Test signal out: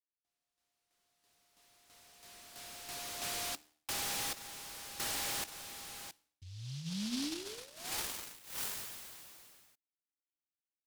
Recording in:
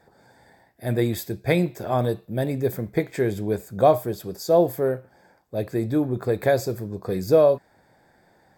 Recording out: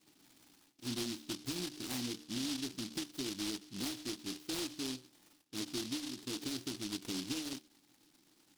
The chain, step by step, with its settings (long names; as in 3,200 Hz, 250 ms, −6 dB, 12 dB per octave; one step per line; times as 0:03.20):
dynamic equaliser 250 Hz, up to +7 dB, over −39 dBFS, Q 2.4
formant filter u
downward compressor 16 to 1, threshold −37 dBFS
low-pass filter 10,000 Hz 12 dB per octave
soft clipping −34.5 dBFS
parametric band 130 Hz +4 dB 0.65 octaves
hum removal 75.85 Hz, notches 36
short delay modulated by noise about 4,100 Hz, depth 0.35 ms
level +3 dB